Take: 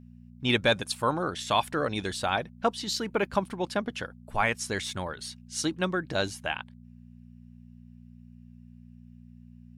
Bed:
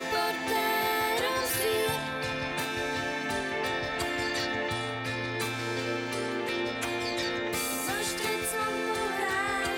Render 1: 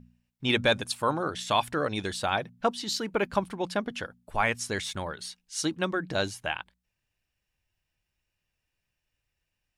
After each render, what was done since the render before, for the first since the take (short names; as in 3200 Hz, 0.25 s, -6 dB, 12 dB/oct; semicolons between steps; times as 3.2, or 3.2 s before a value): de-hum 60 Hz, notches 4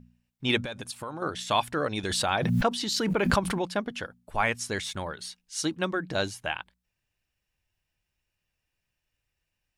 0.64–1.22 compressor 5:1, threshold -33 dBFS; 2.03–3.65 backwards sustainer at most 24 dB/s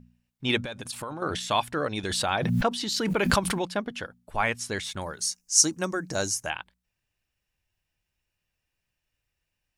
0.85–1.49 transient shaper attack +2 dB, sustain +9 dB; 3.05–3.65 high shelf 2800 Hz +7.5 dB; 5.01–6.5 resonant high shelf 4600 Hz +10 dB, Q 3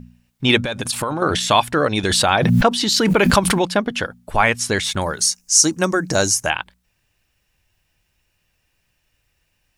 in parallel at -0.5 dB: compressor, threshold -33 dBFS, peak gain reduction 18 dB; on the sum: maximiser +8 dB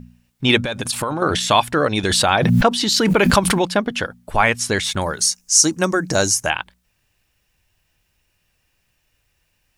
requantised 12-bit, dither none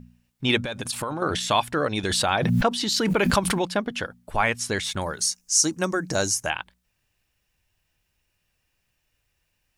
gain -6.5 dB